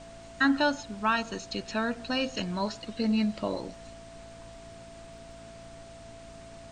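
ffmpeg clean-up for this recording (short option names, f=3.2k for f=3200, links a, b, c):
-af "adeclick=t=4,bandreject=f=56.3:t=h:w=4,bandreject=f=112.6:t=h:w=4,bandreject=f=168.9:t=h:w=4,bandreject=f=225.2:t=h:w=4,bandreject=f=281.5:t=h:w=4,bandreject=f=670:w=30,afftdn=nr=27:nf=-47"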